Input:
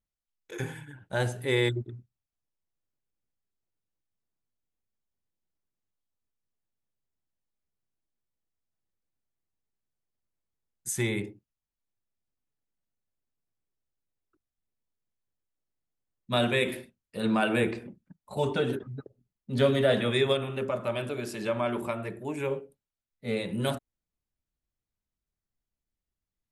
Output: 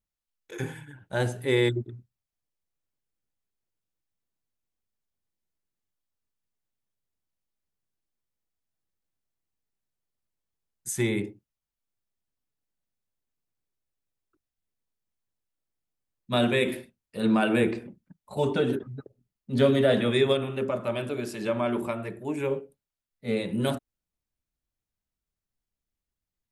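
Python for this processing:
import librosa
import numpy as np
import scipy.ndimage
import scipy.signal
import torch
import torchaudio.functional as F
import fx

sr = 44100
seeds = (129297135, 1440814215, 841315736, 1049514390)

y = fx.dynamic_eq(x, sr, hz=280.0, q=1.0, threshold_db=-37.0, ratio=4.0, max_db=5)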